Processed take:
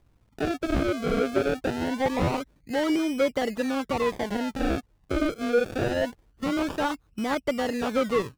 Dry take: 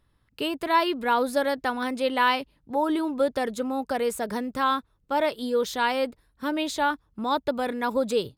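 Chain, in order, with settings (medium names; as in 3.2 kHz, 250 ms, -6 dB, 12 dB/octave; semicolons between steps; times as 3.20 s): local Wiener filter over 9 samples; peaking EQ 950 Hz -12 dB 0.3 oct; in parallel at -1.5 dB: compression, threshold -37 dBFS, peak gain reduction 16.5 dB; on the sum: decimation with a swept rate 32×, swing 100% 0.24 Hz; slew-rate limiter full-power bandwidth 140 Hz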